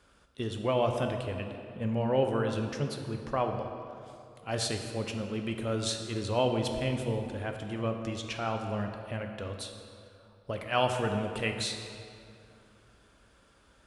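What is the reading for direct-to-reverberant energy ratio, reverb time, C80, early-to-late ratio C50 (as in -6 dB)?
4.0 dB, 2.6 s, 6.5 dB, 5.5 dB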